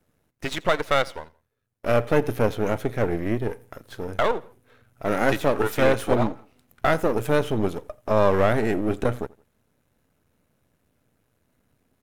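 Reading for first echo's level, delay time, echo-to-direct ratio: -23.0 dB, 85 ms, -22.5 dB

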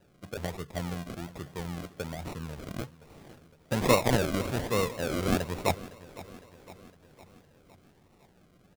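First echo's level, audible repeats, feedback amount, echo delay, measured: -18.0 dB, 4, 58%, 509 ms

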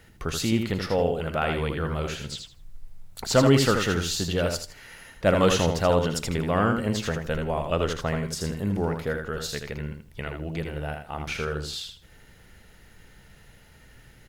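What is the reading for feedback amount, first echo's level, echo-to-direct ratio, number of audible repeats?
20%, -5.5 dB, -5.5 dB, 3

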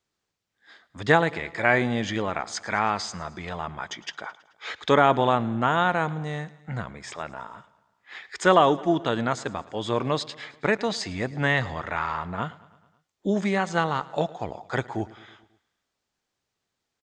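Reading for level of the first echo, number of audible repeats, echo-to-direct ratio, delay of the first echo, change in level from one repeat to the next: -20.5 dB, 4, -18.5 dB, 108 ms, -4.5 dB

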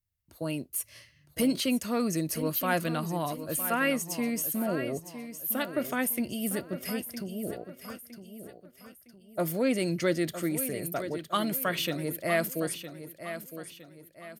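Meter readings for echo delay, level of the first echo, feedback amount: 961 ms, -11.0 dB, 40%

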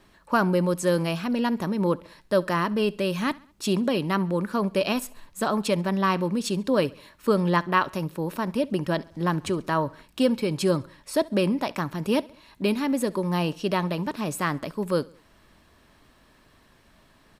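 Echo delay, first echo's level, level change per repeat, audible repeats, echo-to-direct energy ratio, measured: 68 ms, -23.5 dB, -6.0 dB, 2, -22.5 dB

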